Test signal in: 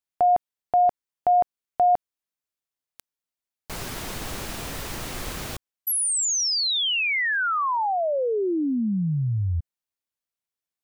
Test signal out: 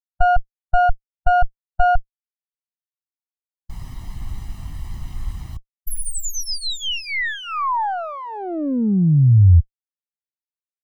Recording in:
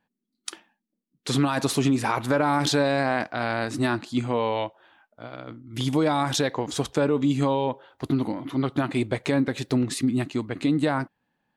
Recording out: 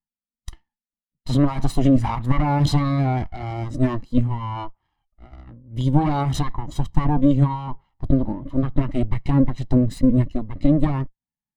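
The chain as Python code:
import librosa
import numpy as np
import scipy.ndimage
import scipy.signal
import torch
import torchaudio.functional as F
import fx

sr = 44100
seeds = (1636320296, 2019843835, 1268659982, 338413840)

y = fx.lower_of_two(x, sr, delay_ms=0.99)
y = fx.low_shelf(y, sr, hz=140.0, db=10.5)
y = fx.spectral_expand(y, sr, expansion=1.5)
y = y * librosa.db_to_amplitude(5.0)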